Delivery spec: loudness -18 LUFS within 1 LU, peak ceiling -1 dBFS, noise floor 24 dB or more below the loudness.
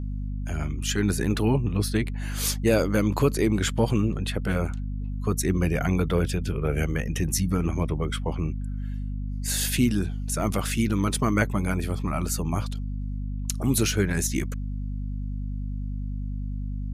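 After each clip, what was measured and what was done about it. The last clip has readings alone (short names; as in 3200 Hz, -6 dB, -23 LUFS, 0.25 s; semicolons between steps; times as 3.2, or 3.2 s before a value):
hum 50 Hz; harmonics up to 250 Hz; hum level -28 dBFS; loudness -26.5 LUFS; peak -8.5 dBFS; loudness target -18.0 LUFS
-> de-hum 50 Hz, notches 5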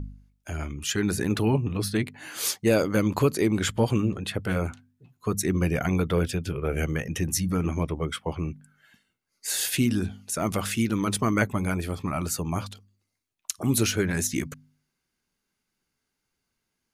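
hum none; loudness -26.5 LUFS; peak -8.5 dBFS; loudness target -18.0 LUFS
-> gain +8.5 dB; limiter -1 dBFS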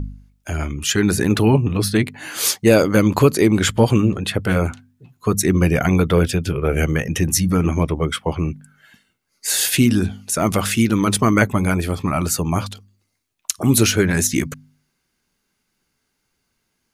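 loudness -18.5 LUFS; peak -1.0 dBFS; noise floor -72 dBFS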